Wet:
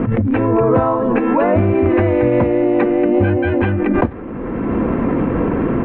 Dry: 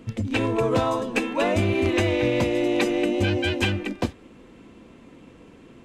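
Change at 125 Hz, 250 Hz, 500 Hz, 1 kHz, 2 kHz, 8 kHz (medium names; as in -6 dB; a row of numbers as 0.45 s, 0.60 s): +9.0 dB, +10.5 dB, +9.0 dB, +9.5 dB, +2.5 dB, under -35 dB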